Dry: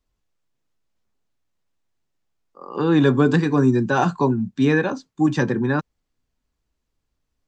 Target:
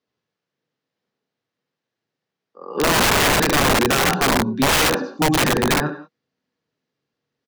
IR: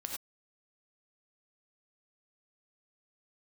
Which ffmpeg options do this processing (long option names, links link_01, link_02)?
-filter_complex "[0:a]highpass=frequency=130:width=0.5412,highpass=frequency=130:width=1.3066,equalizer=frequency=470:width_type=q:width=4:gain=7,equalizer=frequency=1000:width_type=q:width=4:gain=-3,equalizer=frequency=1700:width_type=q:width=4:gain=3,lowpass=frequency=5500:width=0.5412,lowpass=frequency=5500:width=1.3066,aecho=1:1:70|78|97:0.631|0.251|0.398,asplit=2[link_01][link_02];[1:a]atrim=start_sample=2205,adelay=71[link_03];[link_02][link_03]afir=irnorm=-1:irlink=0,volume=-11.5dB[link_04];[link_01][link_04]amix=inputs=2:normalize=0,aeval=exprs='(mod(3.76*val(0)+1,2)-1)/3.76':channel_layout=same"